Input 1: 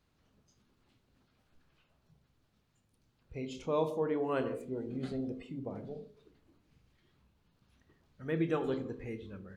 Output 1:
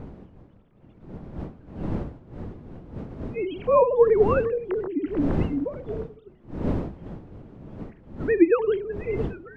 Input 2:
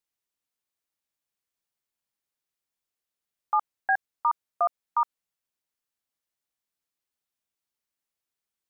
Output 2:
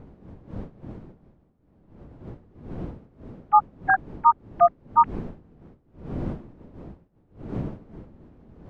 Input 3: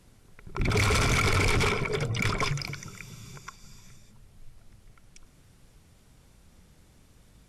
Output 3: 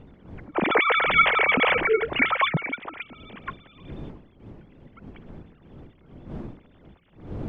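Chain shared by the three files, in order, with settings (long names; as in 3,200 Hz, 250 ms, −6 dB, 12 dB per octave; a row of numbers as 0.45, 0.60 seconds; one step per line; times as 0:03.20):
three sine waves on the formant tracks
wind on the microphone 260 Hz −46 dBFS
normalise the peak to −6 dBFS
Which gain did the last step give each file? +12.5, +7.0, +4.0 decibels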